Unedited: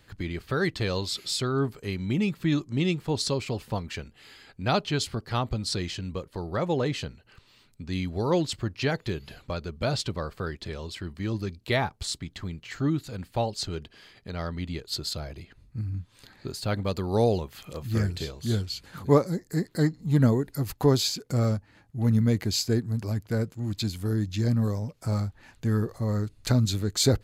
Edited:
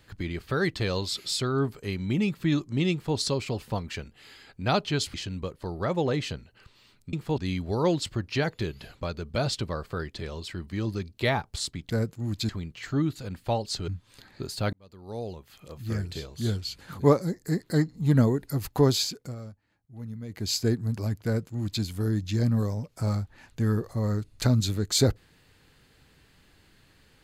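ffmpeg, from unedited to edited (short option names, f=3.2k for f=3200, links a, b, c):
-filter_complex "[0:a]asplit=10[a][b][c][d][e][f][g][h][i][j];[a]atrim=end=5.142[k];[b]atrim=start=5.858:end=7.852[l];[c]atrim=start=2.918:end=3.172[m];[d]atrim=start=7.848:end=12.372[n];[e]atrim=start=23.288:end=23.882[o];[f]atrim=start=12.368:end=13.762[p];[g]atrim=start=15.928:end=16.78,asetpts=PTS-STARTPTS,afade=t=out:st=0.848:d=0.004:c=hsin[q];[h]atrim=start=16.78:end=21.4,asetpts=PTS-STARTPTS,afade=t=in:d=2.04,afade=t=out:st=4.34:d=0.28:silence=0.158489[r];[i]atrim=start=21.4:end=22.33,asetpts=PTS-STARTPTS,volume=-16dB[s];[j]atrim=start=22.33,asetpts=PTS-STARTPTS,afade=t=in:d=0.28:silence=0.158489[t];[k][l]acrossfade=d=0.004:c1=hsin:c2=hsin[u];[u][m]acrossfade=d=0.004:c1=hsin:c2=hsin[v];[v][n]acrossfade=d=0.004:c1=hsin:c2=hsin[w];[w][o]acrossfade=d=0.004:c1=hsin:c2=hsin[x];[x][p]acrossfade=d=0.004:c1=hsin:c2=hsin[y];[q][r][s][t]concat=n=4:v=0:a=1[z];[y][z]acrossfade=d=0.004:c1=hsin:c2=hsin"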